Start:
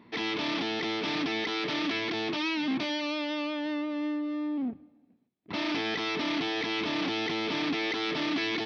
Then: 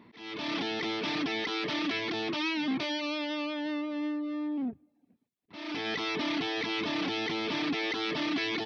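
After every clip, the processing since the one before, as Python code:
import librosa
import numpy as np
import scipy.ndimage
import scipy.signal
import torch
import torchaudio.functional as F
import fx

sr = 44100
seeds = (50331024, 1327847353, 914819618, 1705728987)

y = fx.dereverb_blind(x, sr, rt60_s=0.51)
y = fx.auto_swell(y, sr, attack_ms=443.0)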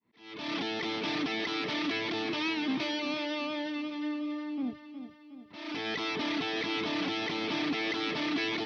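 y = fx.fade_in_head(x, sr, length_s=0.53)
y = fx.echo_feedback(y, sr, ms=364, feedback_pct=53, wet_db=-10.0)
y = y * librosa.db_to_amplitude(-1.0)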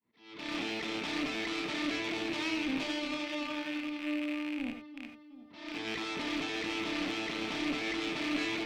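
y = fx.rattle_buzz(x, sr, strikes_db=-44.0, level_db=-27.0)
y = fx.tube_stage(y, sr, drive_db=24.0, bias=0.8)
y = fx.rev_gated(y, sr, seeds[0], gate_ms=110, shape='rising', drr_db=5.5)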